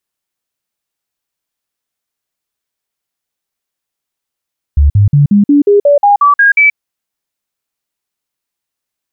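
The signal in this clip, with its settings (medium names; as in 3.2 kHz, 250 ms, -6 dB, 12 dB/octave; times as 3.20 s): stepped sine 72 Hz up, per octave 2, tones 11, 0.13 s, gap 0.05 s -3.5 dBFS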